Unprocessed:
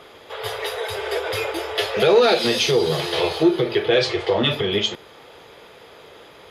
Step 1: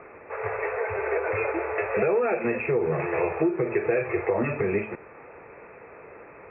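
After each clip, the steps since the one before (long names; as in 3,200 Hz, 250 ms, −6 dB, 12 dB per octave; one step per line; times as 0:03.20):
downward compressor 6 to 1, threshold −20 dBFS, peak gain reduction 10 dB
Chebyshev low-pass filter 2,600 Hz, order 10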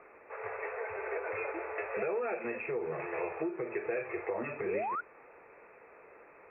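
parametric band 100 Hz −11 dB 2.5 octaves
sound drawn into the spectrogram rise, 0:04.65–0:05.01, 340–1,500 Hz −26 dBFS
level −8.5 dB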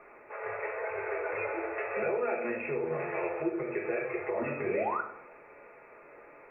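feedback echo with a low-pass in the loop 99 ms, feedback 52%, level −14.5 dB
convolution reverb RT60 0.50 s, pre-delay 3 ms, DRR 0.5 dB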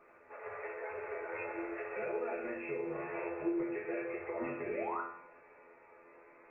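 tuned comb filter 85 Hz, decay 0.59 s, harmonics all, mix 90%
level +5 dB
Opus 20 kbit/s 48,000 Hz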